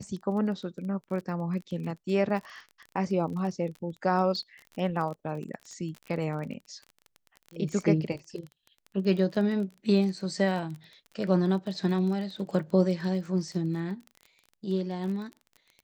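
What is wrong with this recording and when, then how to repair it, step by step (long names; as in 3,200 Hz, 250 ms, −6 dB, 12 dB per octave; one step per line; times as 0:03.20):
surface crackle 26 per second −36 dBFS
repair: click removal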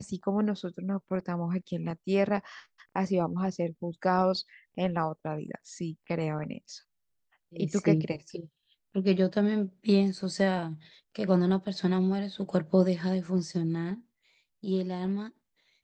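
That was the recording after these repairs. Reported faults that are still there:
none of them is left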